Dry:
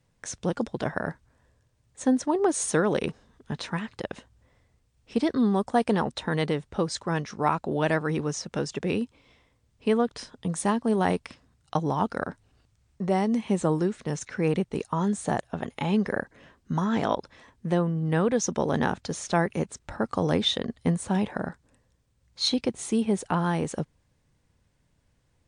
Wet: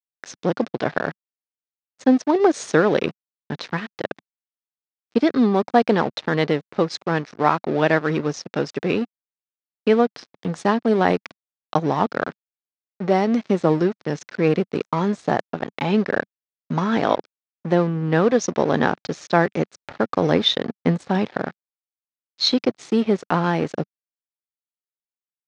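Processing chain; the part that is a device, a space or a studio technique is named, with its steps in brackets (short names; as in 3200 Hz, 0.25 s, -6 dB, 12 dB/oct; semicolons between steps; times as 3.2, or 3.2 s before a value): blown loudspeaker (crossover distortion -39 dBFS; speaker cabinet 150–5400 Hz, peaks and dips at 200 Hz -3 dB, 950 Hz -3 dB, 3000 Hz -3 dB); gain +8.5 dB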